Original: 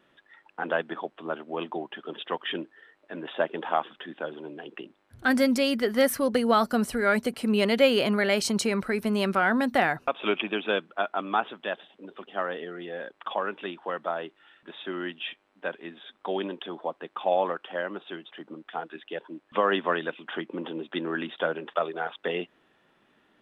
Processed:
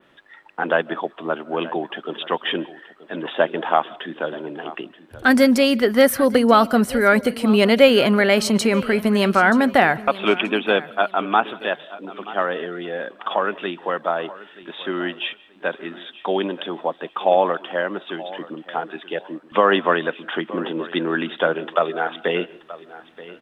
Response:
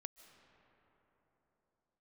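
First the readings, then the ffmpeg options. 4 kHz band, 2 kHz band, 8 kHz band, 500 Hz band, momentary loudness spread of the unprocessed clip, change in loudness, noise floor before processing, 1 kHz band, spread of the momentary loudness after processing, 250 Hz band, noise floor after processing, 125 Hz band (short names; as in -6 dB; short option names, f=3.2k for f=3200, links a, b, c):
+7.0 dB, +8.0 dB, +5.0 dB, +8.0 dB, 17 LU, +8.0 dB, -68 dBFS, +8.0 dB, 16 LU, +8.0 dB, -50 dBFS, +8.0 dB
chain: -filter_complex "[0:a]aecho=1:1:929|1858:0.133|0.0347,asplit=2[a][b];[1:a]atrim=start_sample=2205,afade=t=out:st=0.24:d=0.01,atrim=end_sample=11025[c];[b][c]afir=irnorm=-1:irlink=0,volume=4dB[d];[a][d]amix=inputs=2:normalize=0,adynamicequalizer=threshold=0.01:dfrequency=6700:dqfactor=0.76:tfrequency=6700:tqfactor=0.76:attack=5:release=100:ratio=0.375:range=2.5:mode=cutabove:tftype=bell,volume=3dB"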